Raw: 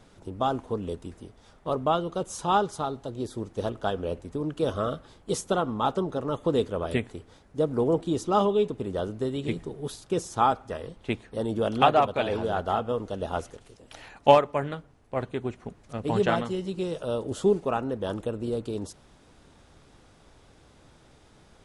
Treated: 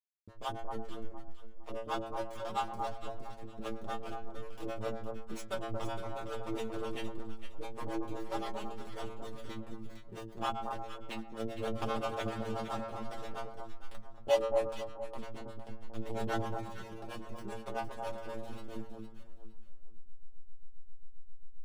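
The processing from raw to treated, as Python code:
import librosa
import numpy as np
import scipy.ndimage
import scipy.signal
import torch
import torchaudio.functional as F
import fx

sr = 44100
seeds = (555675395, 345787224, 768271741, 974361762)

y = fx.bin_compress(x, sr, power=0.6)
y = fx.high_shelf(y, sr, hz=2800.0, db=9.0)
y = fx.backlash(y, sr, play_db=-14.0)
y = fx.stiff_resonator(y, sr, f0_hz=110.0, decay_s=0.63, stiffness=0.002)
y = fx.harmonic_tremolo(y, sr, hz=7.5, depth_pct=100, crossover_hz=420.0)
y = fx.echo_alternate(y, sr, ms=230, hz=1200.0, feedback_pct=53, wet_db=-4.0)
y = y * librosa.db_to_amplitude(2.5)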